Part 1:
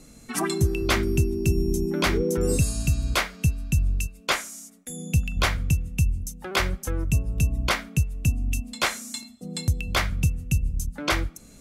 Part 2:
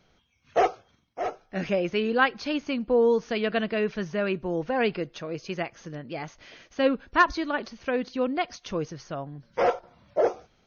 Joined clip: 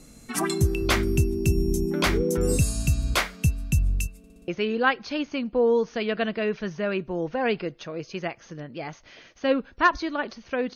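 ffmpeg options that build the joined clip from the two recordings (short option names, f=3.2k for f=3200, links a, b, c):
-filter_complex "[0:a]apad=whole_dur=10.75,atrim=end=10.75,asplit=5[a][b][c][d][e];[a]atrim=end=4.242[f];[b]atrim=start=4.178:end=4.242[g];[c]atrim=start=4.178:end=4.242[h];[d]atrim=start=4.178:end=4.242[i];[e]atrim=start=4.178:end=4.242[j];[1:a]atrim=start=1.828:end=8.1[k];[f][g]acrossfade=d=0.004:c1=hsin:c2=hsin[l];[l][h]acrossfade=d=0.004:c1=hsin:c2=hsin[m];[m][i]acrossfade=d=0.004:c1=hsin:c2=hsin[n];[n][j]acrossfade=d=0.004:c1=hsin:c2=hsin[o];[o][k]acrossfade=d=0.004:c1=hsin:c2=hsin"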